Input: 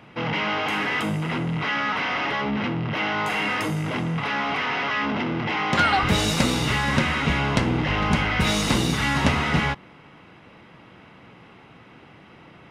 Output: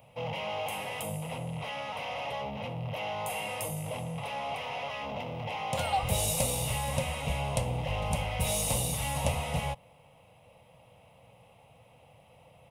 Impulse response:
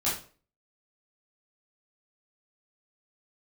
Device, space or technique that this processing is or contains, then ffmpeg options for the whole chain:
exciter from parts: -filter_complex "[0:a]firequalizer=gain_entry='entry(120,0);entry(190,-10);entry(360,-20);entry(510,4);entry(840,-1);entry(1500,-21);entry(2500,-4);entry(4300,-7);entry(9500,13)':delay=0.05:min_phase=1,asplit=2[link_01][link_02];[link_02]highpass=frequency=3500:width=0.5412,highpass=frequency=3500:width=1.3066,asoftclip=type=tanh:threshold=-29.5dB,highpass=4800,volume=-10.5dB[link_03];[link_01][link_03]amix=inputs=2:normalize=0,volume=-5.5dB"

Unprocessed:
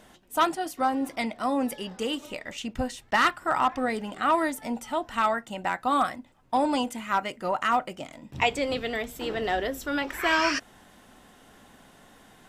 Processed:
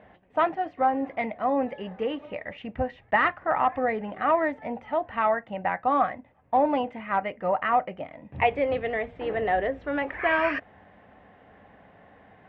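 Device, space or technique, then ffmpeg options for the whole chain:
bass cabinet: -af "highpass=75,equalizer=frequency=97:width_type=q:width=4:gain=3,equalizer=frequency=140:width_type=q:width=4:gain=-8,equalizer=frequency=240:width_type=q:width=4:gain=-9,equalizer=frequency=350:width_type=q:width=4:gain=-9,equalizer=frequency=990:width_type=q:width=4:gain=-6,equalizer=frequency=1400:width_type=q:width=4:gain=-10,lowpass=frequency=2000:width=0.5412,lowpass=frequency=2000:width=1.3066,volume=5.5dB"

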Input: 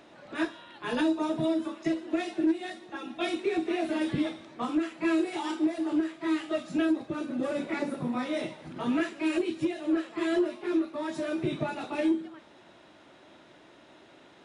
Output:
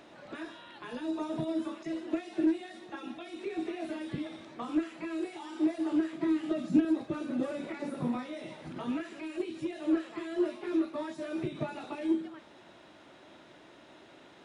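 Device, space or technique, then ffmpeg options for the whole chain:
de-esser from a sidechain: -filter_complex "[0:a]asettb=1/sr,asplit=3[link_01][link_02][link_03];[link_01]atrim=end=6.134[link_04];[link_02]atrim=start=6.13:end=6.85,asetpts=PTS-STARTPTS,afade=type=in:duration=0.004:curve=qsin,afade=type=out:start_time=0.716:duration=0.004:curve=qsin,equalizer=frequency=210:width=0.7:gain=14[link_05];[link_03]atrim=start=6.846[link_06];[link_04][link_05]acrossfade=duration=0.004:curve1=hsin:curve2=qsin[link_07];[link_07][link_06]acrossfade=duration=0.004:curve1=qsin:curve2=hsin,asplit=2[link_08][link_09];[link_09]highpass=4200,apad=whole_len=637174[link_10];[link_08][link_10]sidechaincompress=threshold=-56dB:ratio=16:attack=3.9:release=41"

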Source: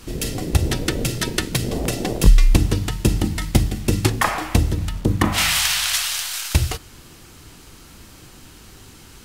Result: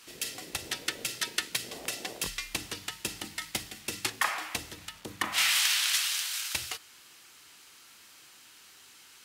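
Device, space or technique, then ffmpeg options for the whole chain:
filter by subtraction: -filter_complex "[0:a]asplit=2[link_01][link_02];[link_02]lowpass=2200,volume=-1[link_03];[link_01][link_03]amix=inputs=2:normalize=0,volume=-7.5dB"

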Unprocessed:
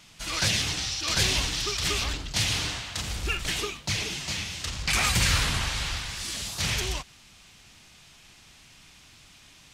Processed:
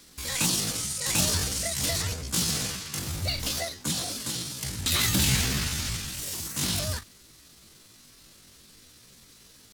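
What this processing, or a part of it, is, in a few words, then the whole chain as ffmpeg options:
chipmunk voice: -af "asetrate=72056,aresample=44100,atempo=0.612027"

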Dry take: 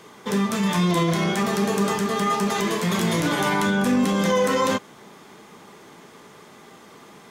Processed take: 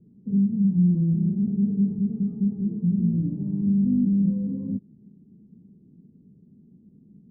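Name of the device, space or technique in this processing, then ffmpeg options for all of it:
the neighbour's flat through the wall: -af "lowpass=frequency=230:width=0.5412,lowpass=frequency=230:width=1.3066,equalizer=frequency=200:width_type=o:width=0.77:gain=4"

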